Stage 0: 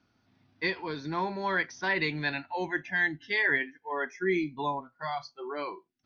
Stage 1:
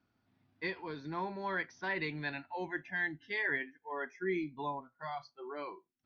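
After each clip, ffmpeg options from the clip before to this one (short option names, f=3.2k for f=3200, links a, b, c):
-af "highshelf=f=5.5k:g=-12,volume=-6.5dB"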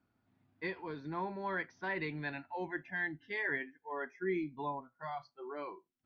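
-af "highshelf=f=3.9k:g=-11.5"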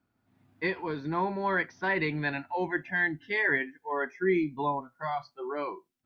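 -af "dynaudnorm=f=130:g=5:m=8dB,volume=1dB"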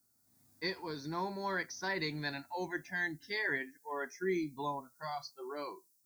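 -af "aexciter=amount=12.9:drive=6.5:freq=4.5k,volume=-8dB"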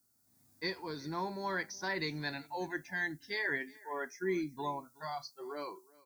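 -af "aecho=1:1:371:0.0708"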